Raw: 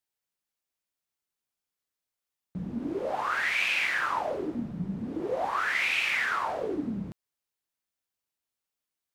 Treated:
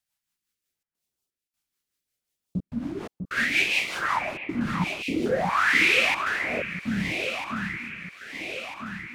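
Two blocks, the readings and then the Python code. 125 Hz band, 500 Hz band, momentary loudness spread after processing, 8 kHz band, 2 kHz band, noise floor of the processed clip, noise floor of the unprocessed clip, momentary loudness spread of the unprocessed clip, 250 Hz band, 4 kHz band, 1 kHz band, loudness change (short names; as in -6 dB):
+6.0 dB, +2.5 dB, 16 LU, +6.5 dB, +5.0 dB, under -85 dBFS, under -85 dBFS, 11 LU, +4.5 dB, +6.5 dB, +2.5 dB, +3.5 dB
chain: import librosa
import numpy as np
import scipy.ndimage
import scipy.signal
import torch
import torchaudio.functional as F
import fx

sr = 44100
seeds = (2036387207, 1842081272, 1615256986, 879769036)

y = fx.step_gate(x, sr, bpm=127, pattern='xxxxxxx.xxx..xx', floor_db=-60.0, edge_ms=4.5)
y = fx.rotary_switch(y, sr, hz=5.5, then_hz=0.75, switch_at_s=4.22)
y = fx.filter_lfo_notch(y, sr, shape='saw_up', hz=0.74, low_hz=340.0, high_hz=2100.0, q=0.76)
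y = fx.echo_alternate(y, sr, ms=649, hz=2100.0, feedback_pct=74, wet_db=-6.0)
y = y * 10.0 ** (8.5 / 20.0)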